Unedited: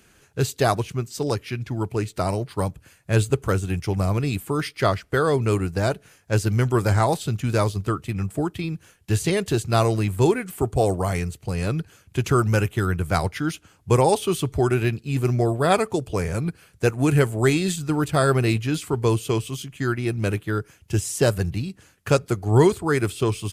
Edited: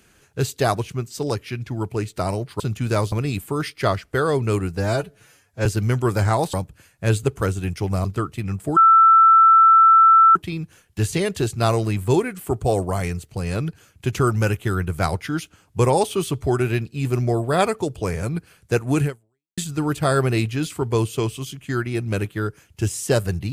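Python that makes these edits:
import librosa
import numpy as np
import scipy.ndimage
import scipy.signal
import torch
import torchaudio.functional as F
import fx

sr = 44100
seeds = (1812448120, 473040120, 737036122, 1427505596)

y = fx.edit(x, sr, fx.swap(start_s=2.6, length_s=1.51, other_s=7.23, other_length_s=0.52),
    fx.stretch_span(start_s=5.76, length_s=0.59, factor=1.5),
    fx.insert_tone(at_s=8.47, length_s=1.59, hz=1330.0, db=-8.5),
    fx.fade_out_span(start_s=17.15, length_s=0.54, curve='exp'), tone=tone)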